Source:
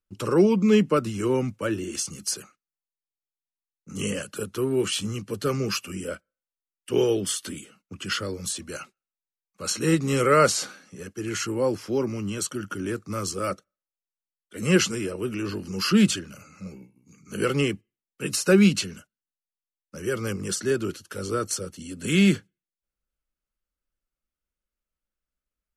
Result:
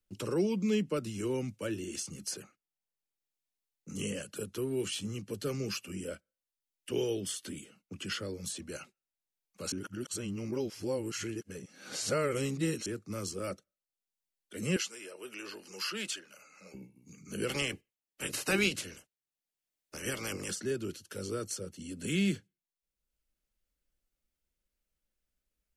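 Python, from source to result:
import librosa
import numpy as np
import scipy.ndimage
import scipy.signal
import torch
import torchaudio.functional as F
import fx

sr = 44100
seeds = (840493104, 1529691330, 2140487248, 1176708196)

y = fx.highpass(x, sr, hz=700.0, slope=12, at=(14.76, 16.74))
y = fx.spec_clip(y, sr, under_db=21, at=(17.48, 20.5), fade=0.02)
y = fx.edit(y, sr, fx.reverse_span(start_s=9.72, length_s=3.14), tone=tone)
y = fx.peak_eq(y, sr, hz=1200.0, db=-7.0, octaves=0.8)
y = fx.band_squash(y, sr, depth_pct=40)
y = y * librosa.db_to_amplitude(-8.5)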